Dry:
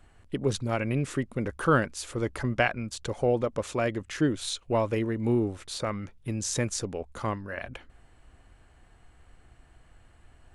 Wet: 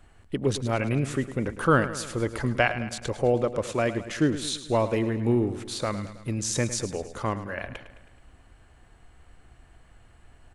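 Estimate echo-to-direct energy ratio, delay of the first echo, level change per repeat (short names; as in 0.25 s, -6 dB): -11.5 dB, 0.107 s, -5.0 dB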